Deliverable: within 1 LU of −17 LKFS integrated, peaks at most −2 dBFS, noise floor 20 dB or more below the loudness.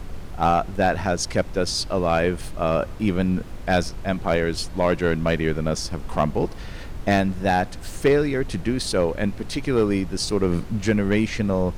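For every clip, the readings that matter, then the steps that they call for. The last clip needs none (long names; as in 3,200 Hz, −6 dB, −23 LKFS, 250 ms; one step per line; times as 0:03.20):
share of clipped samples 0.3%; peaks flattened at −11.0 dBFS; background noise floor −35 dBFS; target noise floor −43 dBFS; integrated loudness −23.0 LKFS; sample peak −11.0 dBFS; target loudness −17.0 LKFS
→ clipped peaks rebuilt −11 dBFS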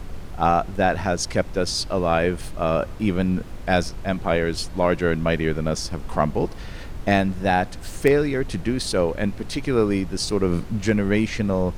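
share of clipped samples 0.0%; background noise floor −35 dBFS; target noise floor −43 dBFS
→ noise reduction from a noise print 8 dB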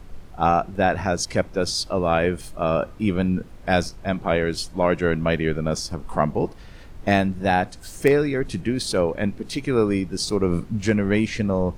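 background noise floor −41 dBFS; target noise floor −43 dBFS
→ noise reduction from a noise print 6 dB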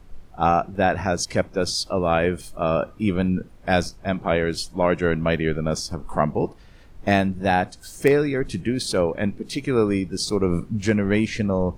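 background noise floor −46 dBFS; integrated loudness −23.0 LKFS; sample peak −3.5 dBFS; target loudness −17.0 LKFS
→ level +6 dB
brickwall limiter −2 dBFS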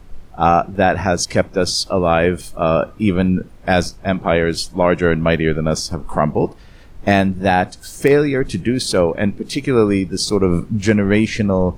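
integrated loudness −17.5 LKFS; sample peak −2.0 dBFS; background noise floor −40 dBFS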